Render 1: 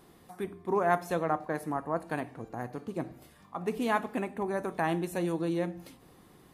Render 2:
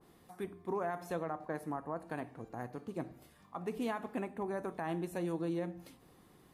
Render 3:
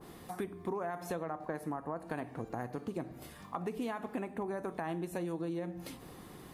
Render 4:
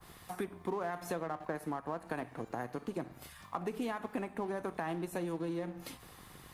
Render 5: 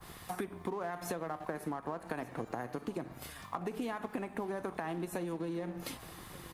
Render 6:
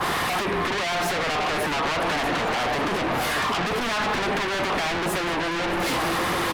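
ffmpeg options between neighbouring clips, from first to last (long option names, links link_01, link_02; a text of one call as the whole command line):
ffmpeg -i in.wav -af "alimiter=limit=-22dB:level=0:latency=1:release=82,adynamicequalizer=threshold=0.00501:dfrequency=1800:dqfactor=0.7:tfrequency=1800:tqfactor=0.7:attack=5:release=100:ratio=0.375:range=2:mode=cutabove:tftype=highshelf,volume=-5dB" out.wav
ffmpeg -i in.wav -af "acompressor=threshold=-47dB:ratio=5,volume=11.5dB" out.wav
ffmpeg -i in.wav -filter_complex "[0:a]acrossover=split=140|870|2600[link_01][link_02][link_03][link_04];[link_01]alimiter=level_in=29.5dB:limit=-24dB:level=0:latency=1:release=278,volume=-29.5dB[link_05];[link_02]aeval=exprs='sgn(val(0))*max(abs(val(0))-0.00237,0)':channel_layout=same[link_06];[link_05][link_06][link_03][link_04]amix=inputs=4:normalize=0,volume=1.5dB" out.wav
ffmpeg -i in.wav -af "acompressor=threshold=-38dB:ratio=6,aecho=1:1:1177:0.1,volume=4.5dB" out.wav
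ffmpeg -i in.wav -filter_complex "[0:a]aecho=1:1:617:0.119,asplit=2[link_01][link_02];[link_02]highpass=frequency=720:poles=1,volume=34dB,asoftclip=type=tanh:threshold=-20.5dB[link_03];[link_01][link_03]amix=inputs=2:normalize=0,lowpass=frequency=1200:poles=1,volume=-6dB,aeval=exprs='0.0841*sin(PI/2*3.16*val(0)/0.0841)':channel_layout=same" out.wav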